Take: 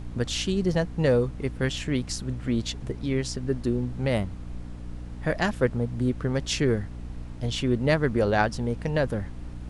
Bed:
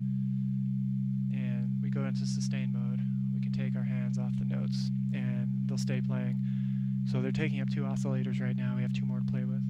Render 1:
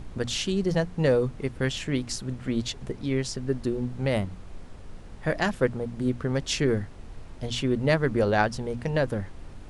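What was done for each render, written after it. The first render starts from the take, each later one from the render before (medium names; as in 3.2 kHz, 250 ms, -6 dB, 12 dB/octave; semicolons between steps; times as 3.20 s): hum notches 60/120/180/240/300 Hz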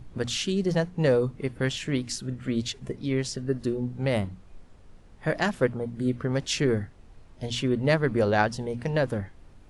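noise print and reduce 9 dB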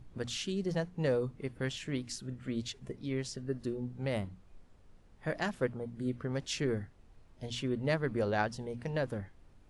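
trim -8.5 dB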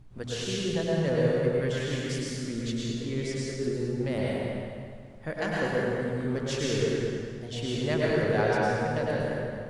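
feedback echo behind a low-pass 214 ms, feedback 32%, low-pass 2.7 kHz, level -6 dB; plate-style reverb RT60 1.9 s, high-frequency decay 0.85×, pre-delay 90 ms, DRR -5 dB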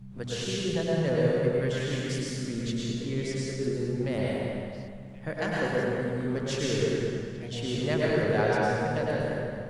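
add bed -14 dB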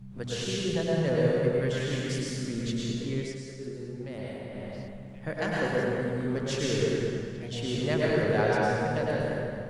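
3.16–4.73 s: dip -8.5 dB, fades 0.23 s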